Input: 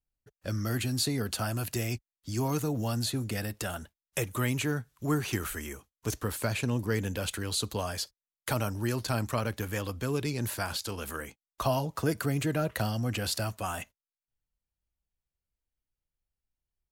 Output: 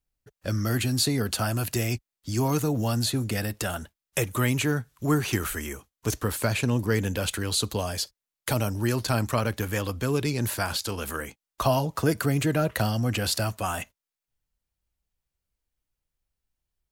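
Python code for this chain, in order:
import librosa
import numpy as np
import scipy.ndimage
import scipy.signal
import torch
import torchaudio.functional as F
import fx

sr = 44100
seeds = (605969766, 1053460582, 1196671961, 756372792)

y = fx.dynamic_eq(x, sr, hz=1300.0, q=1.1, threshold_db=-45.0, ratio=4.0, max_db=-5, at=(7.69, 8.8))
y = y * librosa.db_to_amplitude(5.0)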